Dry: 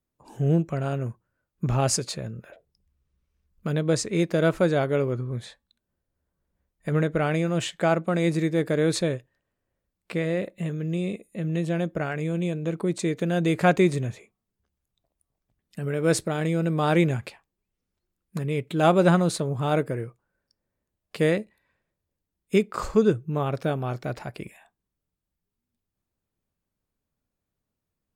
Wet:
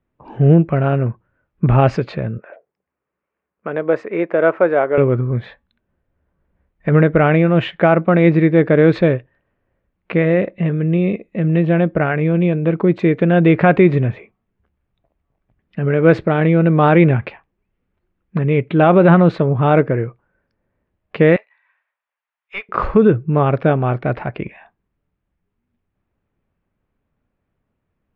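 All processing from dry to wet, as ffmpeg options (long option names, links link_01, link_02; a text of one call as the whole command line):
ffmpeg -i in.wav -filter_complex "[0:a]asettb=1/sr,asplit=3[link_01][link_02][link_03];[link_01]atrim=end=2.384[link_04];[link_02]atrim=start=2.38:end=4.98,asetpts=PTS-STARTPTS,afade=type=in:duration=0.004:curve=qsin,afade=type=out:start_time=2.596:duration=0.004:curve=qsin,highpass=470,equalizer=frequency=4200:width=0.89:gain=-13[link_05];[link_03]atrim=start=4.976[link_06];[link_04][link_05]acrossfade=duration=0.004:curve1=hsin:curve2=qsin[link_07];[link_07][link_06]acrossfade=duration=0.004:curve1=qsin:curve2=hsin,asettb=1/sr,asplit=3[link_08][link_09][link_10];[link_08]atrim=end=21.364[link_11];[link_09]atrim=start=21.36:end=22.69,asetpts=PTS-STARTPTS,afade=type=in:duration=0.004:curve=qsin,afade=type=out:start_time=1.326:duration=0.004:curve=qsin,highpass=frequency=900:width=0.5412,highpass=frequency=900:width=1.3066,aeval=exprs='(tanh(25.1*val(0)+0.25)-tanh(0.25))/25.1':channel_layout=same[link_12];[link_10]atrim=start=22.686[link_13];[link_11][link_12]acrossfade=duration=0.004:curve1=hsin:curve2=qsin[link_14];[link_14][link_13]acrossfade=duration=0.004:curve1=qsin:curve2=hsin,lowpass=frequency=2600:width=0.5412,lowpass=frequency=2600:width=1.3066,alimiter=level_in=12.5dB:limit=-1dB:release=50:level=0:latency=1,volume=-1dB" out.wav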